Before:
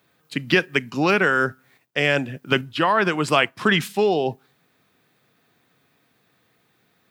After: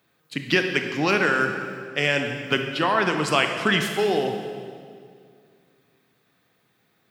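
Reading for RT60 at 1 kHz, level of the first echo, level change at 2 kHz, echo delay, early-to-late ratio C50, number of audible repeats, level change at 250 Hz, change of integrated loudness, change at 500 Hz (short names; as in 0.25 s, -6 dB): 2.0 s, none, -1.5 dB, none, 5.5 dB, none, -2.0 dB, -1.5 dB, -2.0 dB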